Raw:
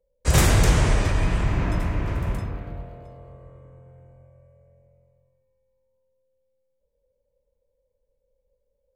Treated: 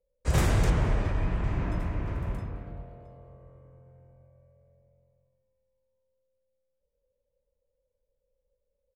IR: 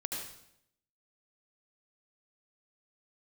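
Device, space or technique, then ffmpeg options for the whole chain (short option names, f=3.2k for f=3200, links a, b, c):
behind a face mask: -filter_complex "[0:a]highshelf=f=2.7k:g=-7.5,asettb=1/sr,asplit=3[a][b][c];[a]atrim=end=0.704[d];[b]atrim=start=0.7:end=1.44,asetpts=PTS-STARTPTS,afade=t=in:d=0.004:c=qsin,afade=t=out:st=0.736:d=0.004:c=qsin,highshelf=f=5.1k:g=-11.5[e];[c]atrim=start=1.436[f];[d][e]acrossfade=d=0.004:c1=hsin:c2=qsin[g];[g][f]acrossfade=d=0.004:c1=qsin:c2=hsin,asplit=3[h][i][j];[i]adelay=214,afreqshift=59,volume=-23.5dB[k];[j]adelay=428,afreqshift=118,volume=-32.1dB[l];[h][k][l]amix=inputs=3:normalize=0,volume=-6dB"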